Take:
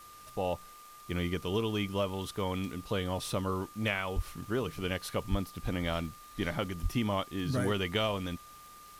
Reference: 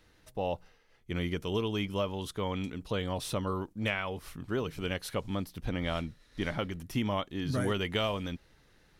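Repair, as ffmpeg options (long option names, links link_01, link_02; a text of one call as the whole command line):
ffmpeg -i in.wav -filter_complex "[0:a]adeclick=threshold=4,bandreject=frequency=1200:width=30,asplit=3[link_01][link_02][link_03];[link_01]afade=type=out:start_time=4.15:duration=0.02[link_04];[link_02]highpass=frequency=140:width=0.5412,highpass=frequency=140:width=1.3066,afade=type=in:start_time=4.15:duration=0.02,afade=type=out:start_time=4.27:duration=0.02[link_05];[link_03]afade=type=in:start_time=4.27:duration=0.02[link_06];[link_04][link_05][link_06]amix=inputs=3:normalize=0,asplit=3[link_07][link_08][link_09];[link_07]afade=type=out:start_time=5.3:duration=0.02[link_10];[link_08]highpass=frequency=140:width=0.5412,highpass=frequency=140:width=1.3066,afade=type=in:start_time=5.3:duration=0.02,afade=type=out:start_time=5.42:duration=0.02[link_11];[link_09]afade=type=in:start_time=5.42:duration=0.02[link_12];[link_10][link_11][link_12]amix=inputs=3:normalize=0,asplit=3[link_13][link_14][link_15];[link_13]afade=type=out:start_time=6.82:duration=0.02[link_16];[link_14]highpass=frequency=140:width=0.5412,highpass=frequency=140:width=1.3066,afade=type=in:start_time=6.82:duration=0.02,afade=type=out:start_time=6.94:duration=0.02[link_17];[link_15]afade=type=in:start_time=6.94:duration=0.02[link_18];[link_16][link_17][link_18]amix=inputs=3:normalize=0,afftdn=noise_reduction=11:noise_floor=-52" out.wav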